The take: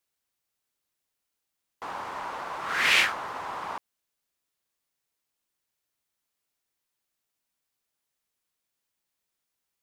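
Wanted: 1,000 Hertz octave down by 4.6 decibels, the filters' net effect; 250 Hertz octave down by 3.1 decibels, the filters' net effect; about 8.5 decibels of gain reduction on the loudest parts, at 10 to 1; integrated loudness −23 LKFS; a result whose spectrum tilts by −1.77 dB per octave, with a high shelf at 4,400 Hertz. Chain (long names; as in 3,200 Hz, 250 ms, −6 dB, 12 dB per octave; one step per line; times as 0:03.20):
parametric band 250 Hz −4 dB
parametric band 1,000 Hz −5 dB
high-shelf EQ 4,400 Hz −8.5 dB
downward compressor 10 to 1, threshold −28 dBFS
level +12.5 dB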